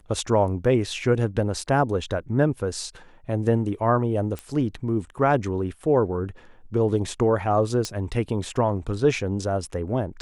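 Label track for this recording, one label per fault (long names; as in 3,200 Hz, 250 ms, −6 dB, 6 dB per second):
4.390000	4.390000	click −18 dBFS
7.850000	7.850000	click −14 dBFS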